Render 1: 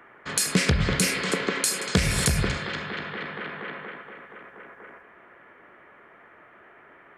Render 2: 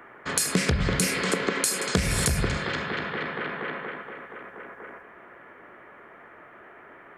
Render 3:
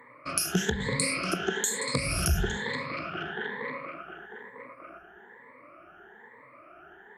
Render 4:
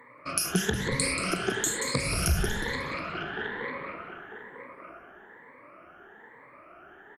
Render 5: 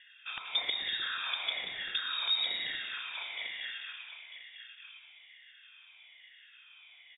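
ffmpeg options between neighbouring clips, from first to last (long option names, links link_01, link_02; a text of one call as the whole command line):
ffmpeg -i in.wav -af "equalizer=frequency=3300:width_type=o:width=1.9:gain=-3.5,bandreject=frequency=50:width_type=h:width=6,bandreject=frequency=100:width_type=h:width=6,bandreject=frequency=150:width_type=h:width=6,bandreject=frequency=200:width_type=h:width=6,acompressor=threshold=-28dB:ratio=2,volume=4.5dB" out.wav
ffmpeg -i in.wav -af "afftfilt=real='re*pow(10,22/40*sin(2*PI*(0.99*log(max(b,1)*sr/1024/100)/log(2)-(1.1)*(pts-256)/sr)))':imag='im*pow(10,22/40*sin(2*PI*(0.99*log(max(b,1)*sr/1024/100)/log(2)-(1.1)*(pts-256)/sr)))':win_size=1024:overlap=0.75,volume=-8.5dB" out.wav
ffmpeg -i in.wav -filter_complex "[0:a]asplit=5[link_01][link_02][link_03][link_04][link_05];[link_02]adelay=182,afreqshift=-64,volume=-9dB[link_06];[link_03]adelay=364,afreqshift=-128,volume=-18.9dB[link_07];[link_04]adelay=546,afreqshift=-192,volume=-28.8dB[link_08];[link_05]adelay=728,afreqshift=-256,volume=-38.7dB[link_09];[link_01][link_06][link_07][link_08][link_09]amix=inputs=5:normalize=0" out.wav
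ffmpeg -i in.wav -af "aeval=exprs='(mod(3.35*val(0)+1,2)-1)/3.35':channel_layout=same,lowpass=frequency=3200:width_type=q:width=0.5098,lowpass=frequency=3200:width_type=q:width=0.6013,lowpass=frequency=3200:width_type=q:width=0.9,lowpass=frequency=3200:width_type=q:width=2.563,afreqshift=-3800,volume=-5.5dB" out.wav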